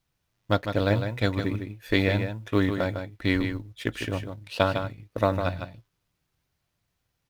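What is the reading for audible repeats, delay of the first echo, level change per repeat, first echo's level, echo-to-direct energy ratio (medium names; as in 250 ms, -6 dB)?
1, 154 ms, no regular repeats, -7.5 dB, -7.5 dB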